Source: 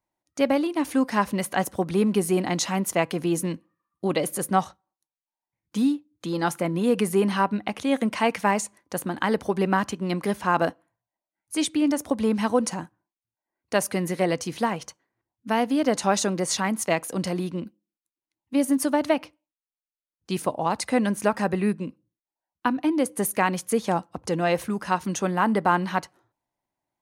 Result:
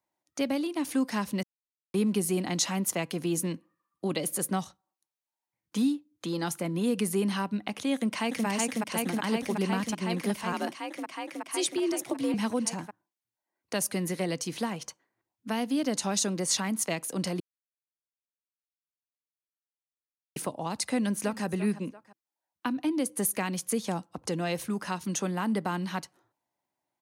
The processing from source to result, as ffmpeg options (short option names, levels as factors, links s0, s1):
-filter_complex "[0:a]asplit=2[s0][s1];[s1]afade=t=in:st=7.94:d=0.01,afade=t=out:st=8.46:d=0.01,aecho=0:1:370|740|1110|1480|1850|2220|2590|2960|3330|3700|4070|4440:0.891251|0.757563|0.643929|0.547339|0.465239|0.395453|0.336135|0.285715|0.242857|0.206429|0.175464|0.149145[s2];[s0][s2]amix=inputs=2:normalize=0,asettb=1/sr,asplit=3[s3][s4][s5];[s3]atrim=end=10.524[s6];[s4]atrim=start=10.52:end=12.34,asetpts=PTS-STARTPTS,afade=t=in:d=0.004:c=qsin,afade=t=out:st=1.816:d=0.004:c=qsin,afreqshift=56[s7];[s5]atrim=start=12.336[s8];[s6][s7]acrossfade=d=0.004:c1=hsin:c2=qsin[s9];[s9][s8]acrossfade=d=0.004:c1=qsin:c2=hsin,asplit=2[s10][s11];[s11]afade=t=in:st=20.89:d=0.01,afade=t=out:st=21.44:d=0.01,aecho=0:1:340|680:0.141254|0.0353134[s12];[s10][s12]amix=inputs=2:normalize=0,asplit=5[s13][s14][s15][s16][s17];[s13]atrim=end=1.43,asetpts=PTS-STARTPTS,afade=t=out:st=1.426:d=0.004:c=hsin[s18];[s14]atrim=start=1.43:end=1.94,asetpts=PTS-STARTPTS,volume=0[s19];[s15]atrim=start=1.94:end=17.4,asetpts=PTS-STARTPTS,afade=t=in:d=0.004:c=hsin,afade=t=out:st=15.456:d=0.004:c=hsin[s20];[s16]atrim=start=17.4:end=20.36,asetpts=PTS-STARTPTS,volume=0[s21];[s17]atrim=start=20.36,asetpts=PTS-STARTPTS,afade=t=in:d=0.004:c=hsin[s22];[s18][s19][s20][s21][s22]concat=n=5:v=0:a=1,highpass=f=190:p=1,acrossover=split=280|3000[s23][s24][s25];[s24]acompressor=threshold=0.0141:ratio=2.5[s26];[s23][s26][s25]amix=inputs=3:normalize=0"